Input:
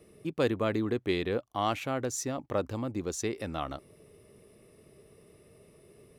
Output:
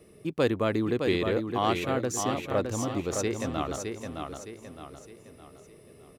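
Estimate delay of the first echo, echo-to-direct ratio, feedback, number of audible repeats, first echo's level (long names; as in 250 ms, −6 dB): 613 ms, −4.5 dB, 41%, 4, −5.5 dB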